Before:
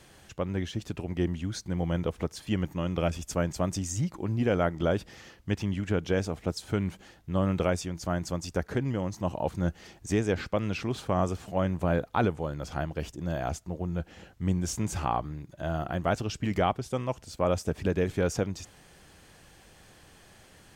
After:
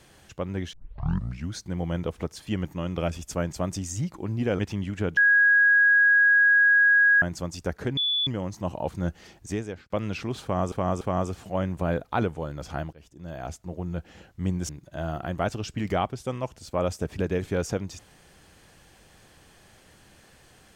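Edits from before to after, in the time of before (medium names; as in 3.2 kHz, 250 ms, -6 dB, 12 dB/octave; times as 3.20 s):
0.73 s: tape start 0.80 s
4.59–5.49 s: delete
6.07–8.12 s: bleep 1.65 kHz -15 dBFS
8.87 s: add tone 3.45 kHz -22 dBFS 0.30 s
9.98–10.50 s: fade out
11.03–11.32 s: loop, 3 plays
12.95–13.80 s: fade in, from -22.5 dB
14.71–15.35 s: delete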